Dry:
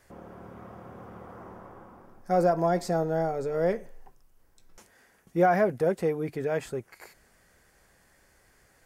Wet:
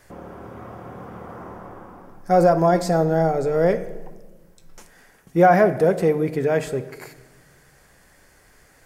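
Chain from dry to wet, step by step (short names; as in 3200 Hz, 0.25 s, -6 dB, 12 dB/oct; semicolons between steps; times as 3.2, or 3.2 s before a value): shoebox room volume 840 m³, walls mixed, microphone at 0.41 m; gain +7.5 dB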